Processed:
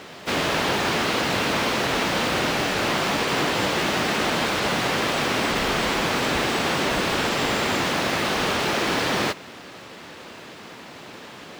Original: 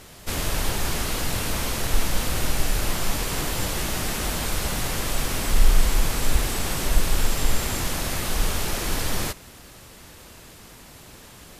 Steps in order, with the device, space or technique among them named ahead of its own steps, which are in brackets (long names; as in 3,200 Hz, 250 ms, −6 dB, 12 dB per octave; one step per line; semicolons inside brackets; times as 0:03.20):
early digital voice recorder (band-pass filter 210–3,800 Hz; one scale factor per block 5 bits)
level +8.5 dB